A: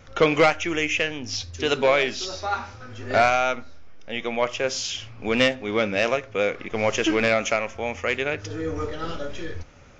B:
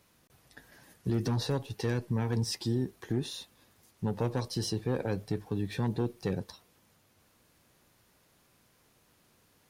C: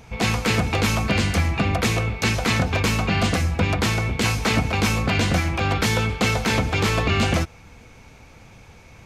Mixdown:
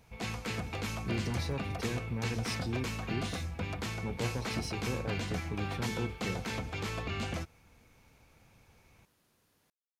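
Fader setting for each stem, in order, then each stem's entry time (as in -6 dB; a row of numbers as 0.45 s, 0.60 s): mute, -6.0 dB, -16.0 dB; mute, 0.00 s, 0.00 s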